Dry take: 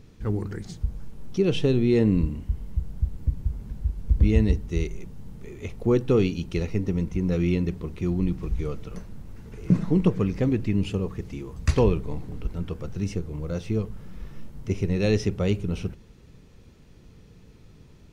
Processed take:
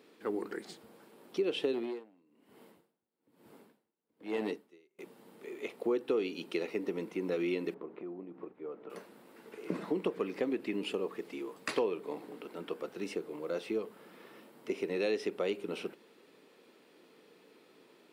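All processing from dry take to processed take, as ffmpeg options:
-filter_complex "[0:a]asettb=1/sr,asplit=3[a][b][c];[a]atrim=end=1.724[d];[b]atrim=start=1.72:end=4.99,asetpts=PTS-STARTPTS,afade=t=in:d=0.004:c=qsin,afade=t=out:st=3.266:d=0.004:c=qsin,highpass=97,asoftclip=type=hard:threshold=-17dB,aeval=exprs='val(0)*pow(10,-34*(0.5-0.5*cos(2*PI*1.1*n/s))/20)':c=same[e];[c]atrim=start=4.986[f];[d][e]acrossfade=d=0.004:c1=hsin:c2=qsin[g];[g][f]acrossfade=d=0.004:c1=qsin:c2=hsin,asettb=1/sr,asplit=3[h][i][j];[h]atrim=end=7.744[k];[i]atrim=start=7.74:end=8.9,asetpts=PTS-STARTPTS,afade=t=in:d=0.004:c=qsin,afade=t=out:st=1.156:d=0.004:c=qsin,lowpass=1.3k,acompressor=threshold=-32dB:ratio=5:attack=3.2:release=140:knee=1:detection=peak[l];[j]atrim=start=8.896[m];[k][l]acrossfade=d=0.004:c1=hsin:c2=qsin[n];[n][m]acrossfade=d=0.004:c1=qsin:c2=hsin,highpass=f=310:w=0.5412,highpass=f=310:w=1.3066,equalizer=f=6.2k:w=2.6:g=-11,acompressor=threshold=-30dB:ratio=3"

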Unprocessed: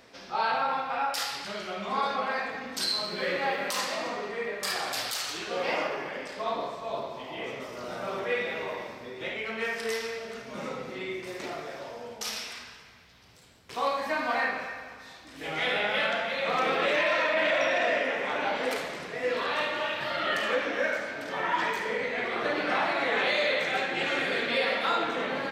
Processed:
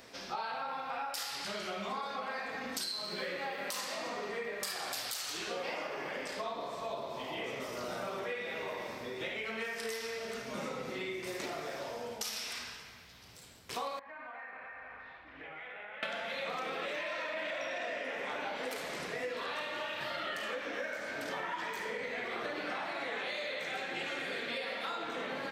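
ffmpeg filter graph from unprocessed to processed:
-filter_complex "[0:a]asettb=1/sr,asplit=3[a][b][c];[a]atrim=end=13.994[d];[b]atrim=start=13.99:end=16.03,asetpts=PTS-STARTPTS,afade=t=in:d=0.004:c=qsin,afade=t=out:st=2.036:d=0.004:c=qsin,lowpass=f=2.3k:w=0.5412,lowpass=f=2.3k:w=1.3066,equalizer=f=210:w=0.45:g=-10,acompressor=threshold=-44dB:ratio=8:attack=3.2:release=140:knee=1:detection=peak[e];[c]atrim=start=16.026[f];[d][e]acrossfade=d=0.004:c1=hsin:c2=qsin[g];[g][f]acrossfade=d=0.004:c1=qsin:c2=hsin,highshelf=f=6.3k:g=8,acompressor=threshold=-35dB:ratio=10"

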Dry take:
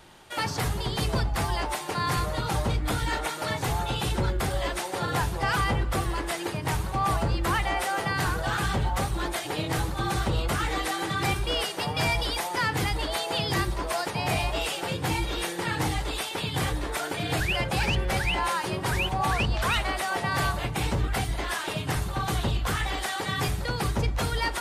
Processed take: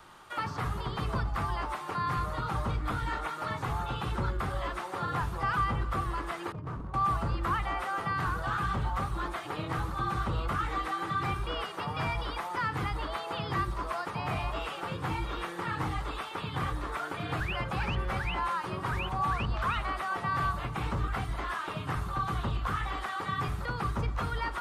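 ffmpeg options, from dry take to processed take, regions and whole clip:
-filter_complex "[0:a]asettb=1/sr,asplit=3[a][b][c];[a]atrim=end=6.524[d];[b]atrim=start=6.52:end=6.94,asetpts=PTS-STARTPTS,afade=t=in:d=0.004:c=qsin,afade=t=out:st=0.416:d=0.004:c=qsin,bandpass=f=120:t=q:w=0.52,aeval=exprs='0.0398*(abs(mod(val(0)/0.0398+3,4)-2)-1)':c=same[e];[c]atrim=start=6.936[f];[d][e]acrossfade=d=0.004:c1=hsin:c2=qsin[g];[g][f]acrossfade=d=0.004:c1=qsin:c2=hsin,acrossover=split=3100[h][i];[i]acompressor=threshold=-50dB:ratio=4:attack=1:release=60[j];[h][j]amix=inputs=2:normalize=0,equalizer=f=1.2k:t=o:w=0.63:g=13,acrossover=split=310|3000[k][l][m];[l]acompressor=threshold=-36dB:ratio=1.5[n];[k][n][m]amix=inputs=3:normalize=0,volume=-5dB"

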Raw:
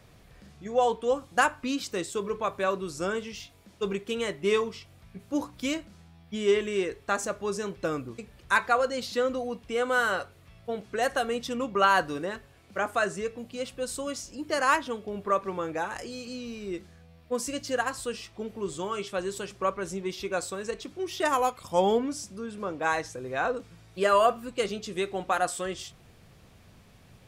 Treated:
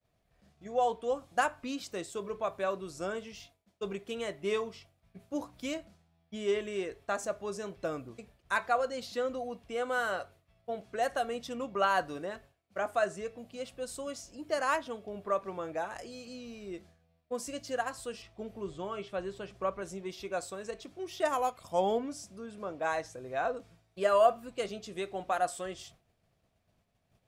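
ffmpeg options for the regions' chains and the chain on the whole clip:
-filter_complex "[0:a]asettb=1/sr,asplit=3[a][b][c];[a]atrim=end=18.224[d];[b]atrim=start=18.22:end=19.82,asetpts=PTS-STARTPTS,afade=t=in:d=0.004:c=qsin,afade=t=out:st=1.596:d=0.004:c=qsin,lowshelf=f=130:g=7,acrossover=split=4100[e][f];[f]acompressor=threshold=-58dB:ratio=4:attack=1:release=60[g];[e][g]amix=inputs=2:normalize=0[h];[c]atrim=start=19.816[i];[d][h]acrossfade=d=0.004:c1=hsin:c2=qsin[j];[j][i]acrossfade=d=0.004:c1=qsin:c2=hsin,agate=range=-33dB:threshold=-45dB:ratio=3:detection=peak,equalizer=f=660:t=o:w=0.34:g=9,volume=-7.5dB"

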